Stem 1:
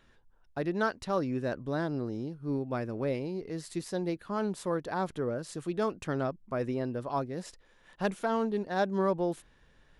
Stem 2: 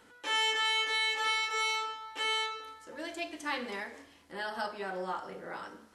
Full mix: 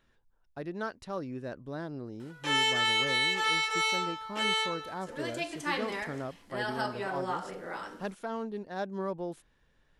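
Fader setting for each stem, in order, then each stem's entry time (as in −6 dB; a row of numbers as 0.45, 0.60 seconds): −6.5, +2.5 decibels; 0.00, 2.20 seconds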